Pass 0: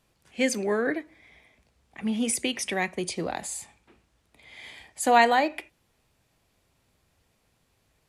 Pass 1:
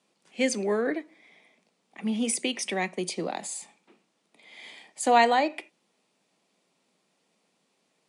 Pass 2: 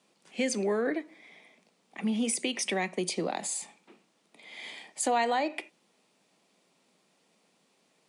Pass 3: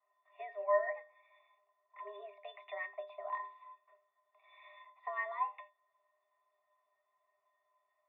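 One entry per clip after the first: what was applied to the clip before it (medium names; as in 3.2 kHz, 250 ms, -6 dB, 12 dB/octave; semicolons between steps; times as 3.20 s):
Chebyshev band-pass 180–9700 Hz, order 4; peaking EQ 1.6 kHz -4.5 dB 0.37 oct
in parallel at 0 dB: peak limiter -19.5 dBFS, peak gain reduction 10 dB; on the sum: compression 2:1, threshold -26 dBFS, peak gain reduction 8 dB; trim -3 dB
pitch-class resonator G#, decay 0.25 s; mistuned SSB +190 Hz 530–2500 Hz; trim +12.5 dB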